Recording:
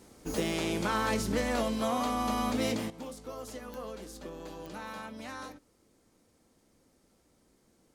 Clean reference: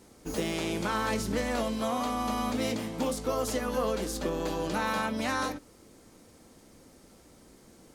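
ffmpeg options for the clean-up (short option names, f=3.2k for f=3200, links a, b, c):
-af "adeclick=t=4,asetnsamples=n=441:p=0,asendcmd='2.9 volume volume 12dB',volume=0dB"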